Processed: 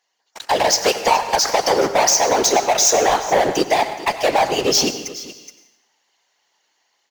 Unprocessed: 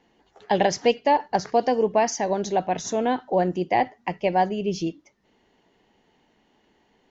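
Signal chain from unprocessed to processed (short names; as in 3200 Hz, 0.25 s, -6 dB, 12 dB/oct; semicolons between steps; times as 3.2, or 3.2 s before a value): HPF 710 Hz 12 dB/oct; resonant high shelf 4000 Hz +7 dB, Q 1.5; compressor, threshold -26 dBFS, peak gain reduction 9 dB; sample leveller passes 5; AGC gain up to 6 dB; whisperiser; on a send: echo 0.422 s -17.5 dB; on the sum: plate-style reverb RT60 0.85 s, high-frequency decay 0.9×, pre-delay 80 ms, DRR 11 dB; mismatched tape noise reduction encoder only; gain -3.5 dB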